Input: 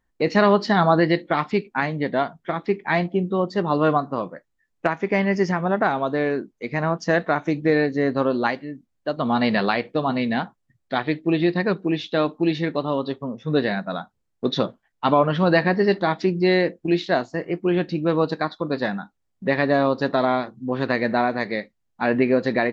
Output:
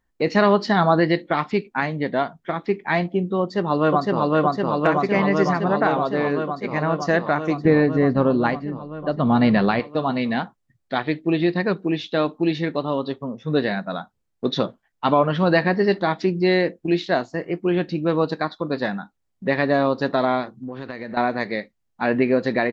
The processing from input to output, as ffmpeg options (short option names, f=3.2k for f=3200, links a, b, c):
-filter_complex "[0:a]asplit=2[a][b];[b]afade=t=in:st=3.41:d=0.01,afade=t=out:st=4.33:d=0.01,aecho=0:1:510|1020|1530|2040|2550|3060|3570|4080|4590|5100|5610|6120:1|0.8|0.64|0.512|0.4096|0.32768|0.262144|0.209715|0.167772|0.134218|0.107374|0.0858993[c];[a][c]amix=inputs=2:normalize=0,asettb=1/sr,asplit=3[d][e][f];[d]atrim=end=7.654[g];[e]atrim=start=7.65:end=9.8,asetpts=PTS-STARTPTS,afade=t=in:d=0.004:c=qsin,afade=t=out:st=2.146:d=0.004:c=qsin,aemphasis=mode=reproduction:type=bsi[h];[f]atrim=start=9.796[i];[g][h]acrossfade=d=0.004:c1=hsin:c2=qsin[j];[j][i]acrossfade=d=0.004:c1=qsin:c2=hsin,asettb=1/sr,asplit=3[k][l][m];[k]atrim=end=20.544[n];[l]atrim=start=20.54:end=21.17,asetpts=PTS-STARTPTS,afade=t=in:d=0.004:c=qsin,afade=t=out:st=0.626:d=0.004:c=qsin,acompressor=threshold=-28dB:ratio=6:attack=3.2:release=140:knee=1:detection=peak[o];[m]atrim=start=21.166[p];[n][o]acrossfade=d=0.004:c1=hsin:c2=qsin[q];[q][p]acrossfade=d=0.004:c1=qsin:c2=hsin"